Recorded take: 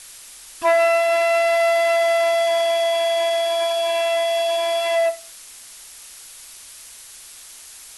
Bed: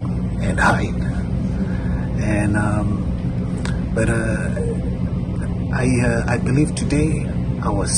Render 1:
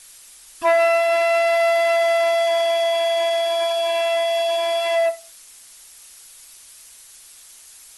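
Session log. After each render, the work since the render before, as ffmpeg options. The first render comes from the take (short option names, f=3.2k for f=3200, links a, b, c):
-af "afftdn=nr=6:nf=-42"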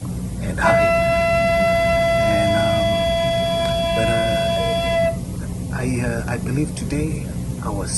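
-filter_complex "[1:a]volume=-4.5dB[a];[0:a][a]amix=inputs=2:normalize=0"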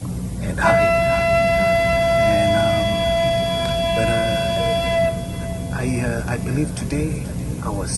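-af "aecho=1:1:485|970|1455|1940|2425:0.178|0.0942|0.05|0.0265|0.014"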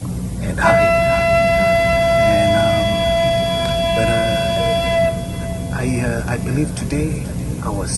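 -af "volume=2.5dB"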